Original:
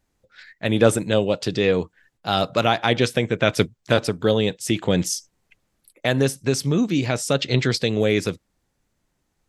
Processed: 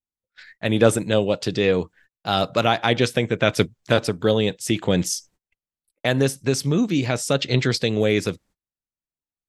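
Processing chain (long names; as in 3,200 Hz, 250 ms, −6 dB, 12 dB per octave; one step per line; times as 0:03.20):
noise gate −50 dBFS, range −29 dB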